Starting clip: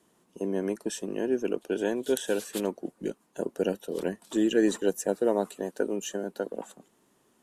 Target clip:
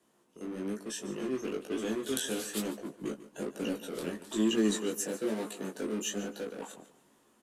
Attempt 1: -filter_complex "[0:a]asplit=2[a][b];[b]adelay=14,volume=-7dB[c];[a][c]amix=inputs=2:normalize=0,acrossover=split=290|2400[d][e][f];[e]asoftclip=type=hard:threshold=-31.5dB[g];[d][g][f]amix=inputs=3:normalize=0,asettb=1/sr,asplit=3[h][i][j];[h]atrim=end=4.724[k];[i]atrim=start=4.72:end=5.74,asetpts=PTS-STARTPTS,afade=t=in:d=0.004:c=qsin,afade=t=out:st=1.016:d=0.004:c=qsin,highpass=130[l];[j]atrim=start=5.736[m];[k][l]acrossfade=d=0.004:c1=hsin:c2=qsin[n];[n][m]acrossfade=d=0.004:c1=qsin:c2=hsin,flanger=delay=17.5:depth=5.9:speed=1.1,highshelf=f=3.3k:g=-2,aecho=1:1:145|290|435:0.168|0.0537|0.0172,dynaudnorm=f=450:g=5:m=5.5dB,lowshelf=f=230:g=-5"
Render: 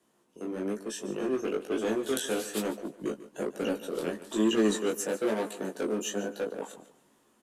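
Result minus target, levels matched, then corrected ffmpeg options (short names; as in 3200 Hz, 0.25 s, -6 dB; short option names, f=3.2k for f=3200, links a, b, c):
hard clip: distortion -4 dB
-filter_complex "[0:a]asplit=2[a][b];[b]adelay=14,volume=-7dB[c];[a][c]amix=inputs=2:normalize=0,acrossover=split=290|2400[d][e][f];[e]asoftclip=type=hard:threshold=-42dB[g];[d][g][f]amix=inputs=3:normalize=0,asettb=1/sr,asplit=3[h][i][j];[h]atrim=end=4.724[k];[i]atrim=start=4.72:end=5.74,asetpts=PTS-STARTPTS,afade=t=in:d=0.004:c=qsin,afade=t=out:st=1.016:d=0.004:c=qsin,highpass=130[l];[j]atrim=start=5.736[m];[k][l]acrossfade=d=0.004:c1=hsin:c2=qsin[n];[n][m]acrossfade=d=0.004:c1=qsin:c2=hsin,flanger=delay=17.5:depth=5.9:speed=1.1,highshelf=f=3.3k:g=-2,aecho=1:1:145|290|435:0.168|0.0537|0.0172,dynaudnorm=f=450:g=5:m=5.5dB,lowshelf=f=230:g=-5"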